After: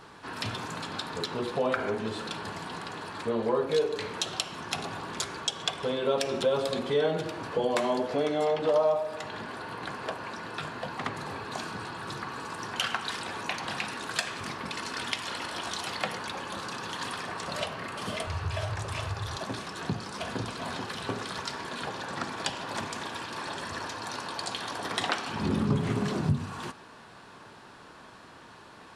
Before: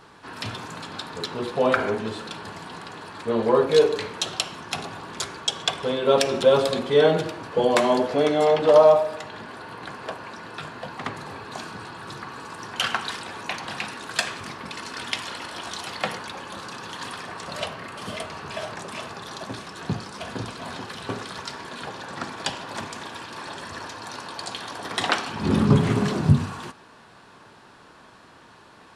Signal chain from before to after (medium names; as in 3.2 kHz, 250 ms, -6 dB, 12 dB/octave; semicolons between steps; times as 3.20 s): 18.27–19.37 s: resonant low shelf 140 Hz +13.5 dB, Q 3; compression 2:1, threshold -30 dBFS, peak gain reduction 11 dB